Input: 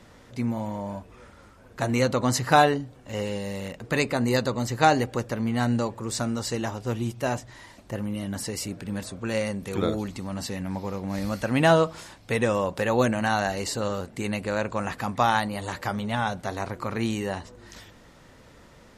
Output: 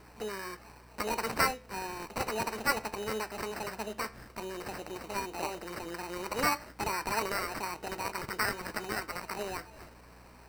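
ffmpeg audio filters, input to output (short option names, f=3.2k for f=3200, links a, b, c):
-filter_complex "[0:a]highpass=f=270:p=1,highshelf=f=6.4k:t=q:w=1.5:g=-13,asplit=2[a][b];[b]acompressor=threshold=-37dB:ratio=6,volume=2.5dB[c];[a][c]amix=inputs=2:normalize=0,asetrate=79821,aresample=44100,aeval=exprs='val(0)+0.00447*(sin(2*PI*60*n/s)+sin(2*PI*2*60*n/s)/2+sin(2*PI*3*60*n/s)/3+sin(2*PI*4*60*n/s)/4+sin(2*PI*5*60*n/s)/5)':c=same,acrusher=samples=13:mix=1:aa=0.000001,flanger=delay=9.2:depth=4.8:regen=-82:speed=0.12:shape=sinusoidal,volume=-5dB"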